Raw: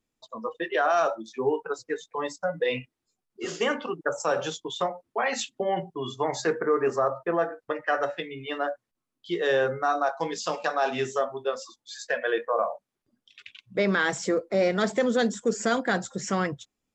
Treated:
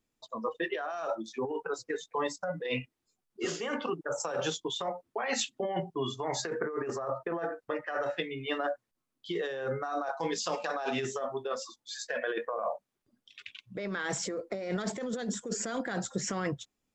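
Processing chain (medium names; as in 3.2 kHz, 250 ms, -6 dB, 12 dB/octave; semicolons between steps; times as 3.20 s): compressor with a negative ratio -29 dBFS, ratio -1; trim -3.5 dB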